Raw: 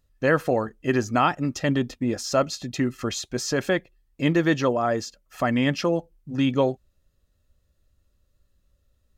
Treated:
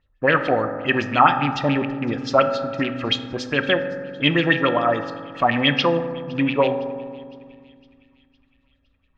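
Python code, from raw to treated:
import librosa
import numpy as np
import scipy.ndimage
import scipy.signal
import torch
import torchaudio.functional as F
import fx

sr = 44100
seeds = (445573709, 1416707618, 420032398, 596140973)

p1 = fx.rattle_buzz(x, sr, strikes_db=-30.0, level_db=-26.0)
p2 = fx.dynamic_eq(p1, sr, hz=4300.0, q=0.74, threshold_db=-43.0, ratio=4.0, max_db=6)
p3 = fx.filter_lfo_lowpass(p2, sr, shape='sine', hz=7.1, low_hz=800.0, high_hz=3500.0, q=4.1)
p4 = p3 + fx.echo_wet_highpass(p3, sr, ms=510, feedback_pct=54, hz=2600.0, wet_db=-22, dry=0)
p5 = fx.rev_fdn(p4, sr, rt60_s=1.9, lf_ratio=1.6, hf_ratio=0.3, size_ms=11.0, drr_db=7.0)
y = F.gain(torch.from_numpy(p5), -1.0).numpy()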